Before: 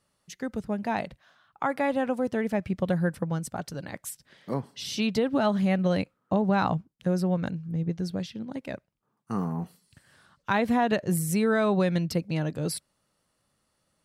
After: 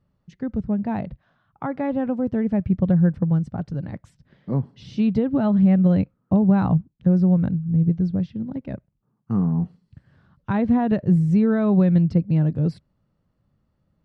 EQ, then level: tone controls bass +9 dB, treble +6 dB; tape spacing loss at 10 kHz 38 dB; bass shelf 350 Hz +4.5 dB; 0.0 dB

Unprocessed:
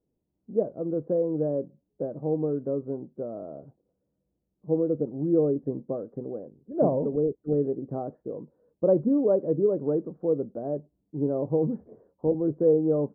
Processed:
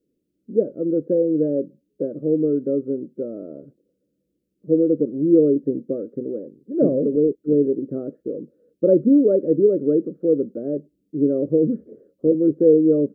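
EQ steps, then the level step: FFT filter 100 Hz 0 dB, 300 Hz +14 dB, 560 Hz +9 dB, 880 Hz -24 dB, 1.3 kHz +3 dB, 1.8 kHz +5 dB, 2.7 kHz +9 dB; -4.0 dB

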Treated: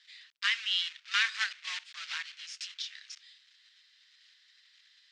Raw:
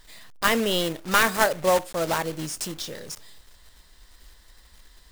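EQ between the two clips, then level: Bessel high-pass 2.9 kHz, order 6; low-pass 5.3 kHz 12 dB/octave; distance through air 150 m; +5.0 dB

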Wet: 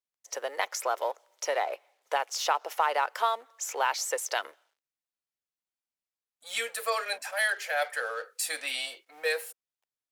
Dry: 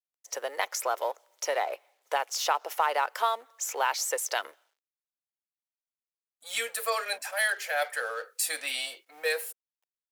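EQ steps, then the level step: treble shelf 11 kHz -8 dB; 0.0 dB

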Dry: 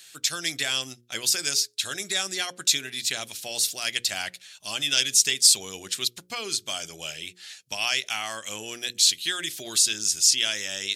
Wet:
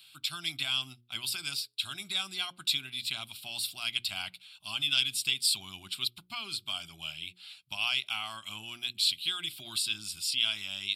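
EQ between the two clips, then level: peaking EQ 480 Hz -7 dB 2.8 oct; treble shelf 6.2 kHz -7.5 dB; static phaser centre 1.8 kHz, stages 6; 0.0 dB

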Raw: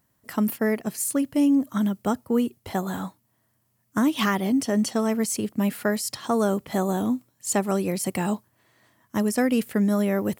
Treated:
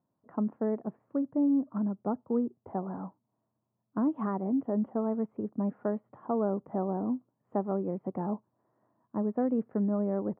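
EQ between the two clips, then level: high-pass 150 Hz 12 dB/octave; inverse Chebyshev low-pass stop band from 4.6 kHz, stop band 70 dB; -6.0 dB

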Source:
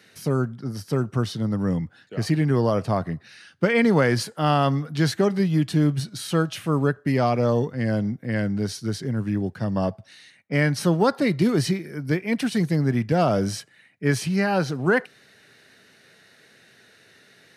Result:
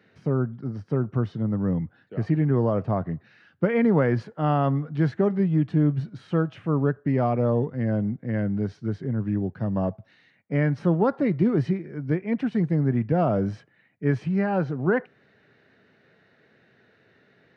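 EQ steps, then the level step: dynamic bell 4.3 kHz, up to -5 dB, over -49 dBFS, Q 1.5; tape spacing loss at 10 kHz 39 dB; 0.0 dB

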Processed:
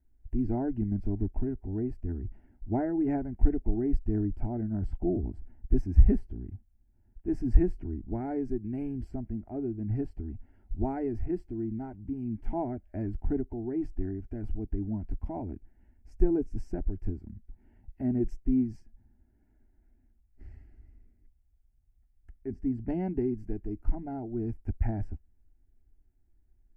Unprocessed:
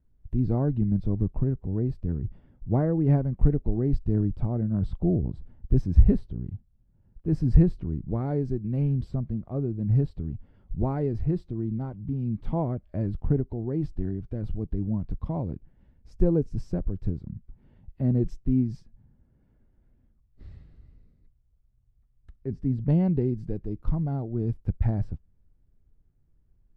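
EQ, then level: static phaser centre 760 Hz, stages 8; 0.0 dB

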